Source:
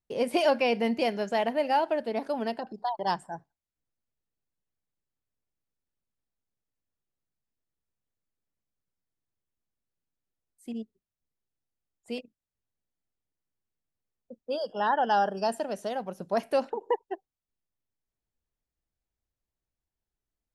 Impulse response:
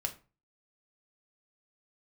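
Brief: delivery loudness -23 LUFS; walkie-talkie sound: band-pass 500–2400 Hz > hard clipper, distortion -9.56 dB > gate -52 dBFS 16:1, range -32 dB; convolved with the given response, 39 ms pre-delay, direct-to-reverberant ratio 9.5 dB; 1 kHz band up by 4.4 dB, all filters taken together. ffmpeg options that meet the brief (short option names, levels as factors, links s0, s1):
-filter_complex "[0:a]equalizer=f=1000:t=o:g=6.5,asplit=2[s0][s1];[1:a]atrim=start_sample=2205,adelay=39[s2];[s1][s2]afir=irnorm=-1:irlink=0,volume=0.282[s3];[s0][s3]amix=inputs=2:normalize=0,highpass=500,lowpass=2400,asoftclip=type=hard:threshold=0.0794,agate=range=0.0251:threshold=0.00251:ratio=16,volume=2"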